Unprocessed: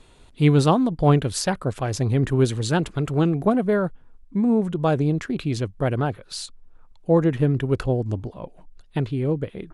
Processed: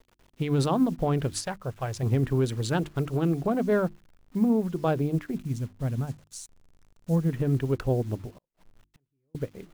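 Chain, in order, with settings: Wiener smoothing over 9 samples; 5.35–7.3 spectral gain 270–5400 Hz -12 dB; requantised 8-bit, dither none; limiter -14.5 dBFS, peak gain reduction 8.5 dB; 1.31–2.03 bell 280 Hz -10.5 dB 1 oct; notches 50/100/150/200/250/300/350 Hz; 6.07–7.16 bell 7300 Hz +7 dB 1.3 oct; 8.38–9.35 flipped gate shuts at -33 dBFS, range -40 dB; upward expander 1.5:1, over -42 dBFS

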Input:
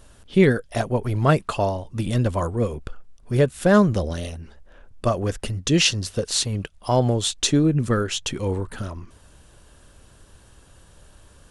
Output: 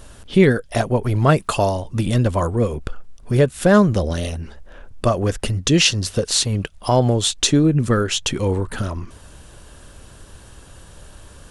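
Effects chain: 1.37–1.8 high shelf 8600 Hz -> 4900 Hz +11.5 dB; in parallel at +2 dB: compressor, threshold -29 dBFS, peak gain reduction 17.5 dB; on the sum: gain +1 dB

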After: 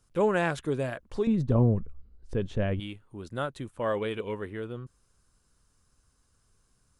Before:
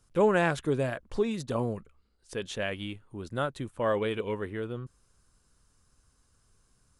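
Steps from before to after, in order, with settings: 1.27–2.8 tilt -4.5 dB/oct; gain -1.5 dB

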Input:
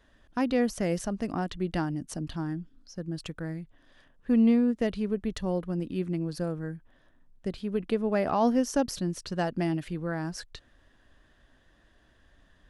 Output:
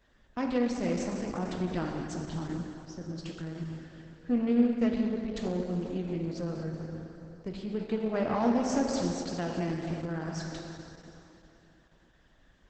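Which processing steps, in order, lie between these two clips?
one diode to ground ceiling -20.5 dBFS; plate-style reverb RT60 3.2 s, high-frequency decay 0.8×, DRR 0.5 dB; gain -3.5 dB; Opus 10 kbps 48000 Hz

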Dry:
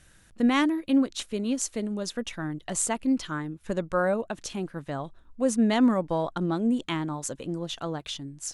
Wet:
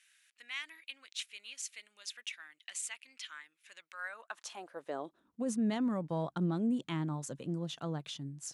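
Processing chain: limiter -20 dBFS, peak gain reduction 9.5 dB; high-pass sweep 2300 Hz -> 140 Hz, 3.93–5.55; gain -8.5 dB

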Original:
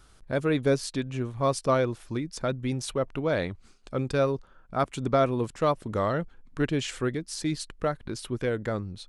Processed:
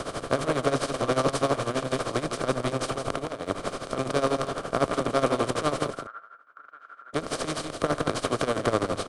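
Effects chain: per-bin compression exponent 0.2; 2.98–3.48 negative-ratio compressor -24 dBFS, ratio -1; tremolo 12 Hz, depth 80%; crackle 21/s -46 dBFS; 5.9–7.13 band-pass 1400 Hz, Q 12; tapped delay 84/165 ms -18/-6.5 dB; 0.94–2 reverse; three-band expander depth 40%; gain -4.5 dB

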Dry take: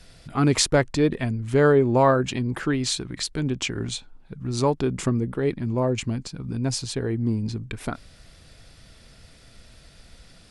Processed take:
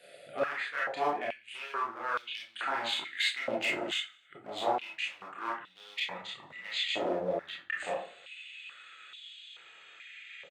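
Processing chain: gliding pitch shift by -6.5 st starting unshifted; treble ducked by the level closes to 1900 Hz, closed at -18.5 dBFS; vocal rider within 4 dB 0.5 s; fixed phaser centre 2400 Hz, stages 4; one-sided clip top -25 dBFS, bottom -21.5 dBFS; feedback echo 87 ms, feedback 50%, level -23.5 dB; reverb RT60 0.35 s, pre-delay 22 ms, DRR -4.5 dB; stepped high-pass 2.3 Hz 570–3400 Hz; gain -4.5 dB

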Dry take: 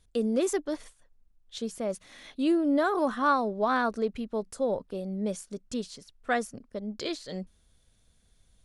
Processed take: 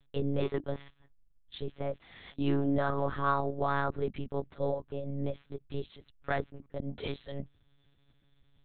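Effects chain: in parallel at -2.5 dB: limiter -24.5 dBFS, peak gain reduction 10 dB; on the sum: monotone LPC vocoder at 8 kHz 140 Hz; gain -6.5 dB

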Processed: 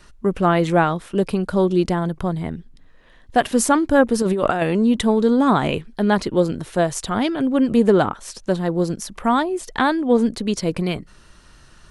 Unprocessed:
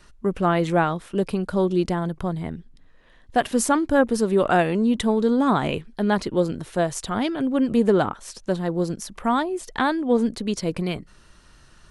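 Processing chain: 4.22–4.62 negative-ratio compressor -23 dBFS, ratio -1; gain +3.5 dB

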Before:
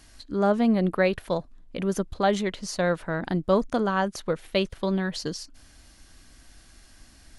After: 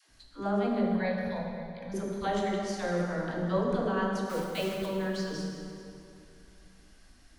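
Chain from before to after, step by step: high shelf 8800 Hz -6.5 dB; dispersion lows, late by 96 ms, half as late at 450 Hz; 0.86–1.94 fixed phaser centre 1900 Hz, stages 8; 4.21–4.86 requantised 6-bit, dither none; plate-style reverb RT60 2.8 s, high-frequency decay 0.7×, DRR -1.5 dB; gain -9 dB

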